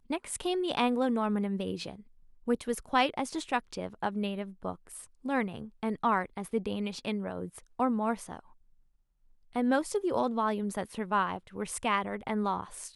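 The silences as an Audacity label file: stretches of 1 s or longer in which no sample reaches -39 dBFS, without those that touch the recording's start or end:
8.390000	9.560000	silence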